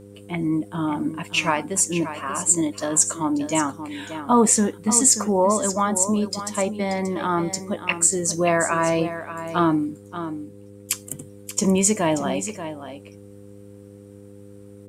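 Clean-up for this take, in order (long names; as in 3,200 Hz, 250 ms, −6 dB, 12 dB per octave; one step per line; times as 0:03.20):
hum removal 101 Hz, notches 5
echo removal 582 ms −11 dB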